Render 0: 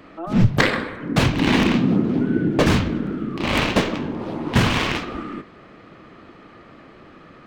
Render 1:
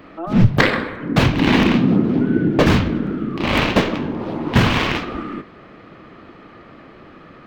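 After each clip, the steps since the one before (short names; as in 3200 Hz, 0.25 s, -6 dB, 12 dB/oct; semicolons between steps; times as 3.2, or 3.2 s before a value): bell 8700 Hz -7.5 dB 1.2 oct; gain +3 dB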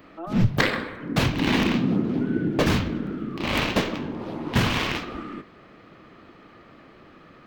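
high shelf 4900 Hz +9 dB; gain -7.5 dB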